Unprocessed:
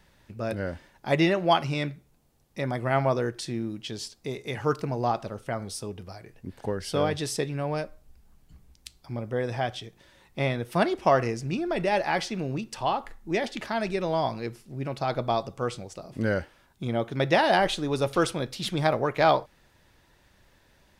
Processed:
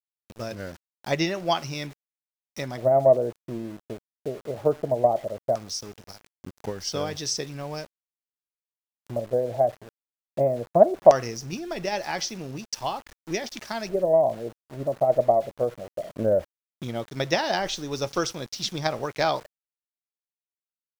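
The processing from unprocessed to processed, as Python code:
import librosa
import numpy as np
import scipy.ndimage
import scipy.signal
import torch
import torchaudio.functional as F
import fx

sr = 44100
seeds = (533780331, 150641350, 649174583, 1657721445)

y = fx.filter_lfo_lowpass(x, sr, shape='square', hz=0.18, low_hz=620.0, high_hz=5800.0, q=6.0)
y = np.where(np.abs(y) >= 10.0 ** (-37.5 / 20.0), y, 0.0)
y = fx.transient(y, sr, attack_db=5, sustain_db=1)
y = y * 10.0 ** (-5.5 / 20.0)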